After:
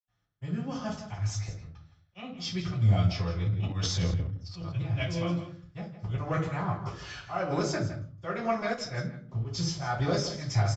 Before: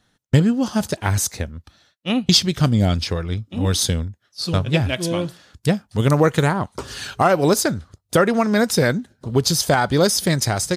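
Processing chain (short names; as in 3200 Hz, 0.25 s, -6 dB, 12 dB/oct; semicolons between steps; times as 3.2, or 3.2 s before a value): low shelf 430 Hz -3 dB; auto swell 0.191 s; sample leveller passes 1; reverb RT60 0.40 s, pre-delay 77 ms; 3.46–4.72 transient shaper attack -3 dB, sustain +10 dB; rippled Chebyshev low-pass 7600 Hz, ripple 6 dB; outdoor echo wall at 28 m, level -11 dB; 8.74–9.29 upward expander 1.5:1, over -42 dBFS; gain +4.5 dB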